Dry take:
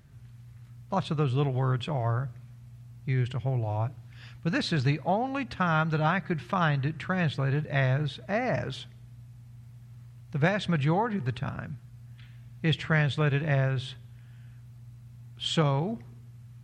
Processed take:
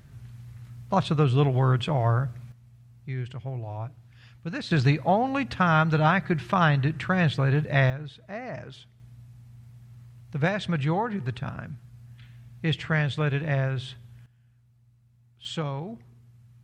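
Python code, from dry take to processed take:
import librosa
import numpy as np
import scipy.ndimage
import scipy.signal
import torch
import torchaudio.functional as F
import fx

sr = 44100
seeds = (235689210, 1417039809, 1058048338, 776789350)

y = fx.gain(x, sr, db=fx.steps((0.0, 5.0), (2.52, -5.0), (4.71, 4.5), (7.9, -8.0), (9.0, 0.0), (14.26, -13.0), (15.45, -5.5)))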